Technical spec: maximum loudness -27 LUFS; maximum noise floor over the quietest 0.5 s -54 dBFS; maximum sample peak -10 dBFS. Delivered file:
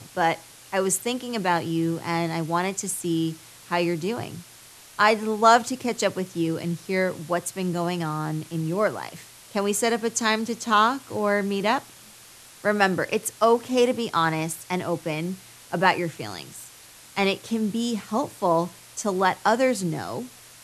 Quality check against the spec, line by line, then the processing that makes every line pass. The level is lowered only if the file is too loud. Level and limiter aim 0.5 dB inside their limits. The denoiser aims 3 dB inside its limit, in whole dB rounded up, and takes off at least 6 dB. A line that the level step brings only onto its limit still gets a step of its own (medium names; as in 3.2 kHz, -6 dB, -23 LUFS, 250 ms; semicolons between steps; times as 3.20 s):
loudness -24.5 LUFS: fail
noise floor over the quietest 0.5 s -48 dBFS: fail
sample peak -3.5 dBFS: fail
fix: noise reduction 6 dB, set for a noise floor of -48 dBFS; trim -3 dB; peak limiter -10.5 dBFS